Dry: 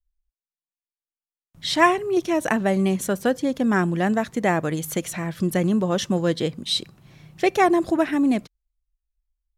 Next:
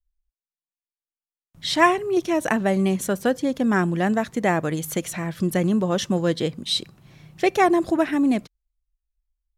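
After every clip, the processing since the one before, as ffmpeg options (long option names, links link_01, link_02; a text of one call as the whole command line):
ffmpeg -i in.wav -af anull out.wav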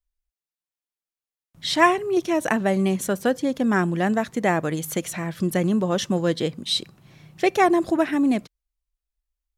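ffmpeg -i in.wav -af "lowshelf=frequency=65:gain=-7" out.wav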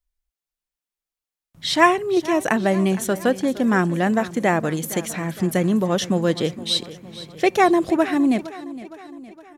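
ffmpeg -i in.wav -af "aecho=1:1:463|926|1389|1852|2315:0.15|0.0808|0.0436|0.0236|0.0127,volume=2dB" out.wav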